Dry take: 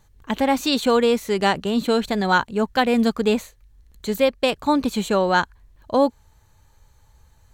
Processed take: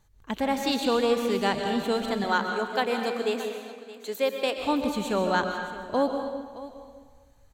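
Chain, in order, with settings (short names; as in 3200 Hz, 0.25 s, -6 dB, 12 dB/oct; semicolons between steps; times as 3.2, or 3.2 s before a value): 2.24–4.57 HPF 290 Hz 24 dB/oct; echo 0.62 s -15.5 dB; digital reverb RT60 1.4 s, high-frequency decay 0.85×, pre-delay 85 ms, DRR 4 dB; gain -7 dB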